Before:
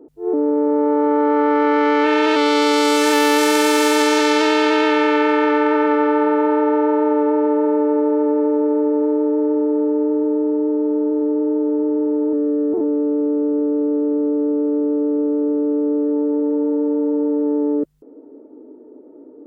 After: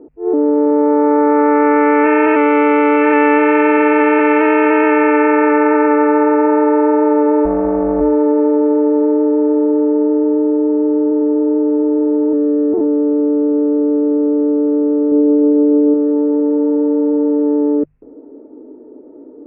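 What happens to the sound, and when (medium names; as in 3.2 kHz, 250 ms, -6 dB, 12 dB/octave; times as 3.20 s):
7.45–8.01 s: AM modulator 250 Hz, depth 50%
15.07–15.94 s: doubling 48 ms -6 dB
whole clip: Chebyshev low-pass 2.6 kHz, order 6; bass shelf 110 Hz +10.5 dB; hum notches 50/100/150 Hz; trim +4 dB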